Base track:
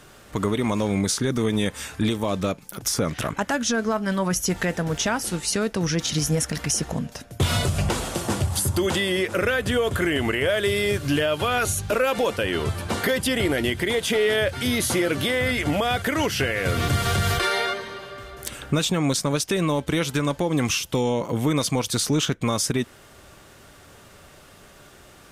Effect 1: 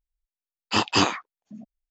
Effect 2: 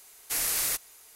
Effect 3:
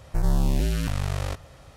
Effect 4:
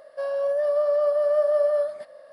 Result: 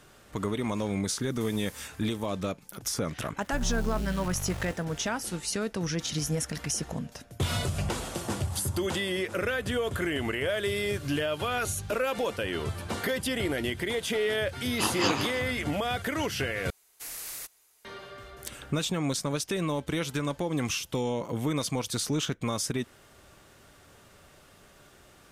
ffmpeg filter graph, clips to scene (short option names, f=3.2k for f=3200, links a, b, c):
-filter_complex "[2:a]asplit=2[a][b];[0:a]volume=-7dB[c];[a]acompressor=threshold=-38dB:ratio=10:attack=2.2:release=186:knee=1:detection=peak[d];[3:a]acrusher=bits=6:mix=0:aa=0.000001[e];[1:a]aecho=1:1:158|316|474|632:0.422|0.139|0.0459|0.0152[f];[c]asplit=2[g][h];[g]atrim=end=16.704[i];[b]atrim=end=1.15,asetpts=PTS-STARTPTS,volume=-11dB[j];[h]atrim=start=17.846[k];[d]atrim=end=1.15,asetpts=PTS-STARTPTS,volume=-7.5dB,afade=t=in:d=0.004:c=hsin,afade=t=out:st=1.146:d=0.004:c=hsin,adelay=1110[l];[e]atrim=end=1.76,asetpts=PTS-STARTPTS,volume=-9.5dB,afade=t=in:d=0.004:c=hsin,afade=t=out:st=1.756:d=0.004:c=hsin,adelay=3380[m];[f]atrim=end=1.9,asetpts=PTS-STARTPTS,volume=-7dB,afade=t=in:d=0.004:c=hsin,afade=t=out:st=1.896:d=0.004:c=hsin,adelay=14070[n];[i][j]acrossfade=d=0.004:c1=hsin:c2=hsin[o];[o][k]acrossfade=d=0.004:c1=hsin:c2=hsin[p];[p][l][m][n]amix=inputs=4:normalize=0"